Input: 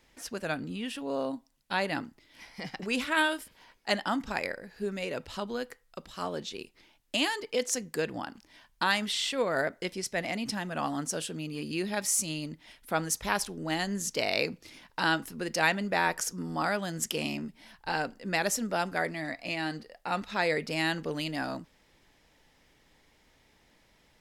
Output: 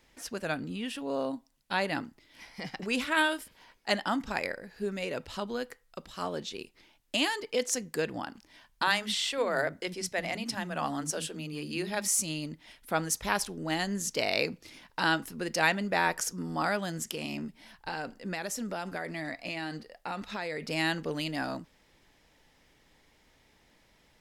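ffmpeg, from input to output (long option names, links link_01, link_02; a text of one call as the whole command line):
ffmpeg -i in.wav -filter_complex "[0:a]asettb=1/sr,asplit=3[link_01][link_02][link_03];[link_01]atrim=end=8.824[link_04];[link_02]atrim=start=8.82:end=12.08,asetpts=PTS-STARTPTS,afade=type=in:duration=0.004:curve=qsin,afade=type=out:start_time=3.256:duration=0.004:curve=qsin,acrossover=split=260[link_05][link_06];[link_05]adelay=50[link_07];[link_07][link_06]amix=inputs=2:normalize=0,atrim=end_sample=143766[link_08];[link_03]atrim=start=12.076[link_09];[link_04][link_08]acrossfade=duration=0.004:curve1=hsin:curve2=qsin[link_10];[link_10][link_09]acrossfade=duration=0.004:curve1=qsin:curve2=hsin,asettb=1/sr,asplit=3[link_11][link_12][link_13];[link_11]atrim=end=16.904[link_14];[link_12]atrim=start=16.9:end=20.66,asetpts=PTS-STARTPTS,afade=type=in:duration=0.004:curve=qsin,afade=type=out:start_time=3.756:duration=0.004:curve=qsin,acompressor=threshold=-31dB:ratio=6:attack=3.2:release=140:knee=1:detection=peak[link_15];[link_13]atrim=start=20.656[link_16];[link_14][link_15]acrossfade=duration=0.004:curve1=hsin:curve2=qsin[link_17];[link_17][link_16]acrossfade=duration=0.004:curve1=qsin:curve2=hsin" out.wav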